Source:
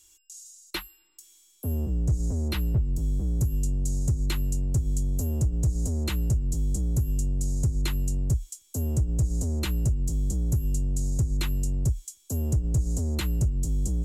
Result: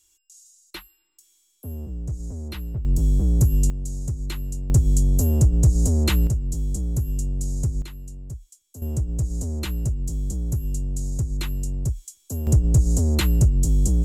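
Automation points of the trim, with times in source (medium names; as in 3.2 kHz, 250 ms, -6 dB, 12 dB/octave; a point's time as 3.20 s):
-5 dB
from 2.85 s +7.5 dB
from 3.70 s -2.5 dB
from 4.70 s +8 dB
from 6.27 s +1 dB
from 7.82 s -10.5 dB
from 8.82 s 0 dB
from 12.47 s +7.5 dB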